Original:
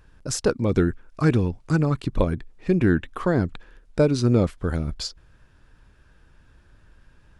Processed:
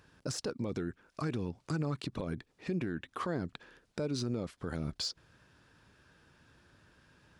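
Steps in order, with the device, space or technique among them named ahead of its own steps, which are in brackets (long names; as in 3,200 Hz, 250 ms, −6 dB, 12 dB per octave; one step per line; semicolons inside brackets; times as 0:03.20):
broadcast voice chain (high-pass filter 120 Hz 12 dB per octave; de-essing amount 65%; downward compressor 5 to 1, threshold −26 dBFS, peak gain reduction 11.5 dB; parametric band 4,700 Hz +4 dB 1.1 octaves; brickwall limiter −23.5 dBFS, peak gain reduction 10 dB)
level −2.5 dB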